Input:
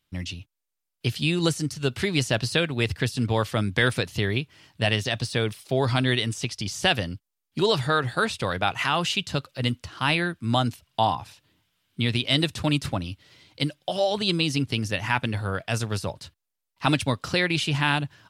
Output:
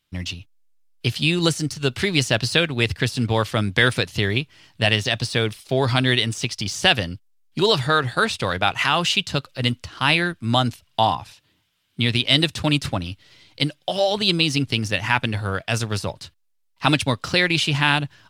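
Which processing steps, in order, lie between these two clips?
bell 3800 Hz +3.5 dB 2.7 oct; in parallel at -8 dB: backlash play -29.5 dBFS

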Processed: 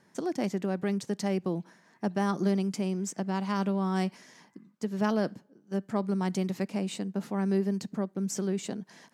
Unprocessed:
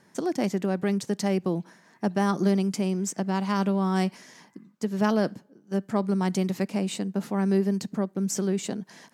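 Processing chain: high shelf 10000 Hz -4.5 dB; gain -4 dB

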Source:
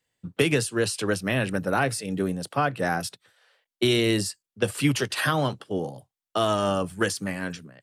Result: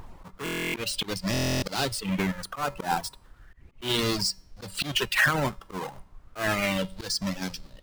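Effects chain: half-waves squared off; resonator 190 Hz, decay 0.46 s, harmonics odd, mix 60%; in parallel at +1.5 dB: compressor, threshold -38 dBFS, peak gain reduction 15.5 dB; on the sum: added noise brown -43 dBFS; reverb removal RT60 1.4 s; limiter -20.5 dBFS, peak gain reduction 4.5 dB; auto swell 0.131 s; stuck buffer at 0.44/1.32, samples 1024, times 12; LFO bell 0.34 Hz 930–5300 Hz +12 dB

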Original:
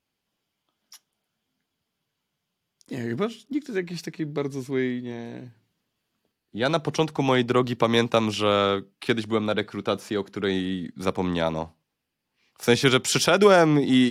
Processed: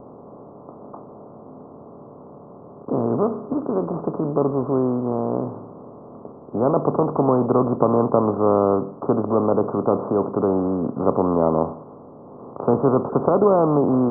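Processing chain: per-bin compression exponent 0.4; steep low-pass 1200 Hz 72 dB/oct; low-pass opened by the level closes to 930 Hz, open at -12 dBFS; gain -2 dB

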